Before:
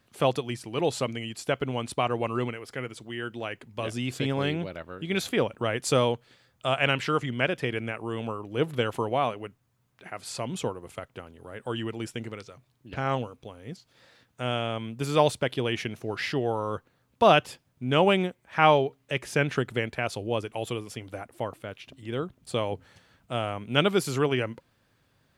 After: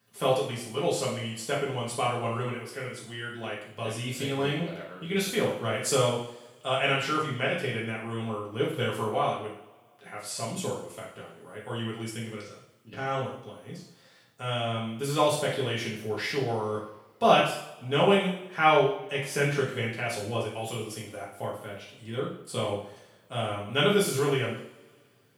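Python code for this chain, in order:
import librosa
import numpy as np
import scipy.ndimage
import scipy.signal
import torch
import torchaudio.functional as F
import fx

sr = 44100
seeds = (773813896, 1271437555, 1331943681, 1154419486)

y = scipy.signal.sosfilt(scipy.signal.butter(2, 110.0, 'highpass', fs=sr, output='sos'), x)
y = fx.high_shelf(y, sr, hz=8100.0, db=10.0)
y = fx.rev_double_slope(y, sr, seeds[0], early_s=0.62, late_s=2.4, knee_db=-24, drr_db=-6.0)
y = y * 10.0 ** (-8.0 / 20.0)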